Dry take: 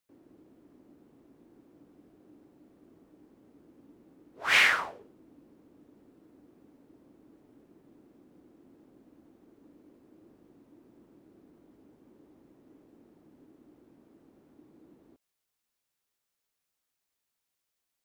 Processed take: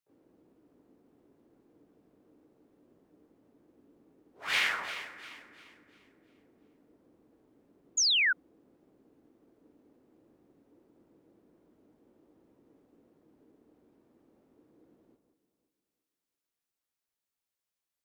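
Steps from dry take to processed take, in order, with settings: harmony voices +7 st -7 dB; echo whose repeats swap between lows and highs 174 ms, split 1.7 kHz, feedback 61%, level -7.5 dB; painted sound fall, 7.97–8.33 s, 1.4–7.1 kHz -18 dBFS; trim -7.5 dB

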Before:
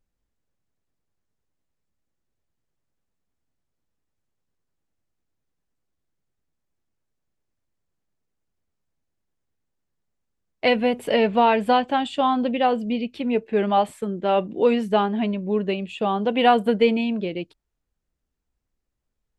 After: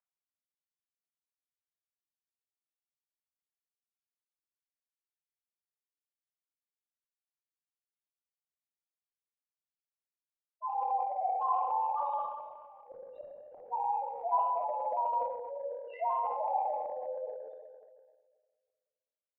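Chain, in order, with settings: cycle switcher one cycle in 3, inverted; peak limiter -15 dBFS, peak gain reduction 9.5 dB; loudest bins only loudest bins 1; short-mantissa float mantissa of 8-bit; mistuned SSB +210 Hz 470–2200 Hz; 12.06–13.64 s: inverted gate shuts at -41 dBFS, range -31 dB; distance through air 480 m; simulated room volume 1800 m³, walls mixed, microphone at 2.9 m; transient shaper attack 0 dB, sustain +8 dB; tape noise reduction on one side only encoder only; trim +3 dB

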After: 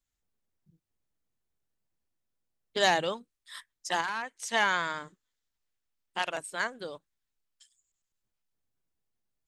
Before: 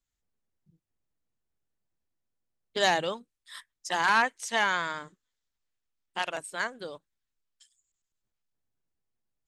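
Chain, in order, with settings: 4.00–4.54 s: compression 12:1, threshold -30 dBFS, peak gain reduction 12 dB

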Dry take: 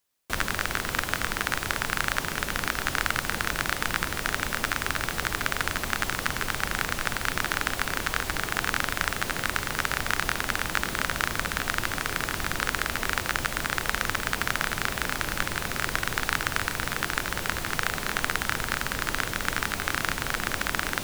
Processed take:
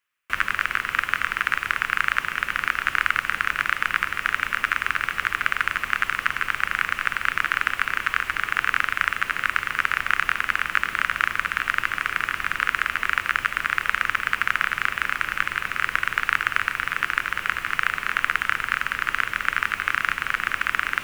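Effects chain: high-order bell 1.8 kHz +15.5 dB; trim -9 dB

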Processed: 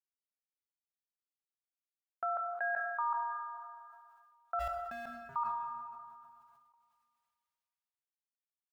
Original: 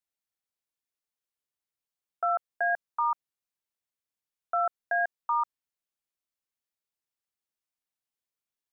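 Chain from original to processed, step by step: 4.59–5.36 s: median filter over 41 samples; peaking EQ 320 Hz -12 dB 1.3 oct; plate-style reverb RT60 2.3 s, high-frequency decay 0.8×, DRR 10.5 dB; in parallel at -2 dB: compression, threshold -42 dBFS, peak gain reduction 16 dB; on the sum: tone controls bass -3 dB, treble -7 dB; gate with hold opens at -58 dBFS; decay stretcher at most 28 dB/s; trim -7 dB

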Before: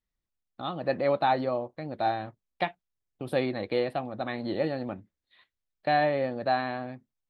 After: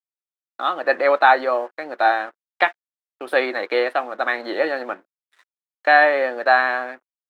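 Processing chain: crossover distortion -58.5 dBFS; high-pass 340 Hz 24 dB/octave; peaking EQ 1.5 kHz +13 dB 1.1 oct; trim +6.5 dB

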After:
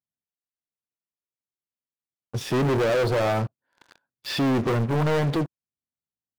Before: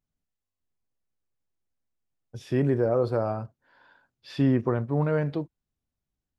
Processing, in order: high-pass 110 Hz 12 dB/octave; waveshaping leveller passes 5; in parallel at -3 dB: saturation -26 dBFS, distortion -11 dB; on the sum: trim -7 dB

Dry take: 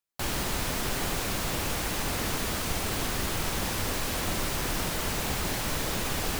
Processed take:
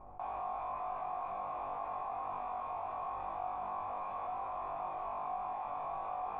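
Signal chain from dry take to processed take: tilt shelf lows -5.5 dB, about 750 Hz; added noise brown -44 dBFS; cascade formant filter a; on a send: flutter echo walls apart 3.5 m, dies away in 0.45 s; on the sum: level flattener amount 50%

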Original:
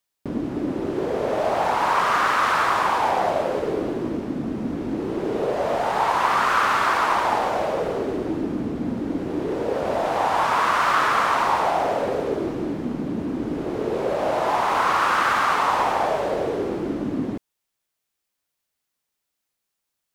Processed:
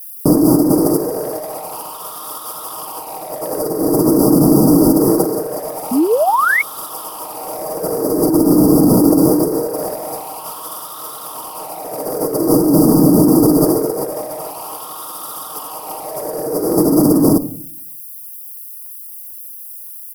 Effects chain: brick-wall FIR band-stop 1.4–4.6 kHz; simulated room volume 730 m³, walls furnished, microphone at 0.44 m; saturation -20 dBFS, distortion -12 dB; tone controls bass -12 dB, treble +12 dB; speakerphone echo 80 ms, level -23 dB; compressor with a negative ratio -33 dBFS, ratio -0.5; FFT filter 160 Hz 0 dB, 2.2 kHz -14 dB, 4.7 kHz -5 dB, 6.9 kHz -14 dB, 11 kHz +10 dB; painted sound rise, 5.91–6.62 s, 230–2300 Hz -35 dBFS; comb 6.4 ms, depth 41%; loudness maximiser +22 dB; trim -1 dB

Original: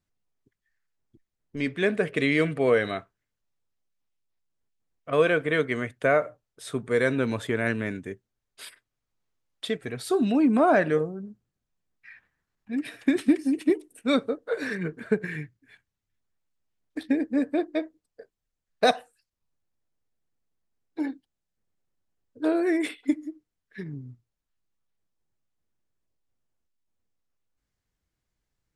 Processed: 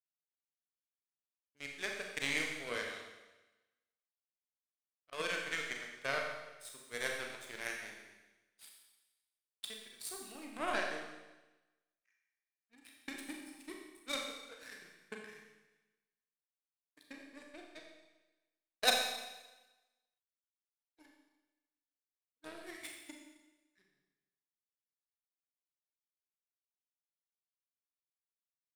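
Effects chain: tilt EQ +4.5 dB/octave; power-law waveshaper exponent 2; Schroeder reverb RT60 1.1 s, combs from 29 ms, DRR 0.5 dB; trim -4.5 dB

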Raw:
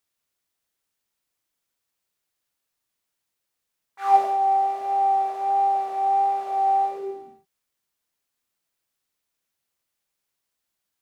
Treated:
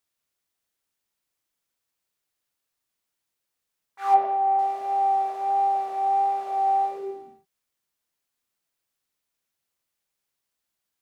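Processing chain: 4.14–4.59 s: low-pass 2.3 kHz 12 dB/octave; trim -1.5 dB

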